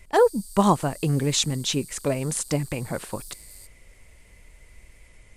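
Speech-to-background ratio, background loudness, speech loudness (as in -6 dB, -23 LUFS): 18.0 dB, -42.5 LUFS, -24.5 LUFS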